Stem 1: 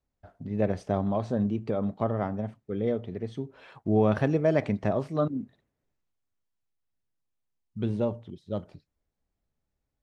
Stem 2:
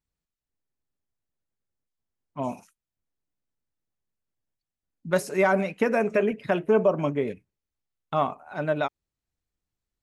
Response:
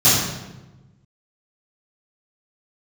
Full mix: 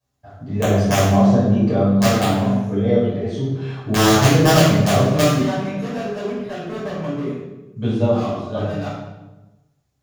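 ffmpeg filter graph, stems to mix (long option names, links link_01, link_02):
-filter_complex "[0:a]lowshelf=frequency=350:gain=-9,aeval=exprs='(mod(7.94*val(0)+1,2)-1)/7.94':channel_layout=same,volume=1dB,asplit=3[link_01][link_02][link_03];[link_02]volume=-10.5dB[link_04];[1:a]highpass=frequency=240:poles=1,asoftclip=type=hard:threshold=-25.5dB,volume=-7dB,asplit=2[link_05][link_06];[link_06]volume=-14.5dB[link_07];[link_03]apad=whole_len=441888[link_08];[link_05][link_08]sidechaincompress=threshold=-38dB:ratio=8:attack=16:release=1020[link_09];[2:a]atrim=start_sample=2205[link_10];[link_04][link_07]amix=inputs=2:normalize=0[link_11];[link_11][link_10]afir=irnorm=-1:irlink=0[link_12];[link_01][link_09][link_12]amix=inputs=3:normalize=0"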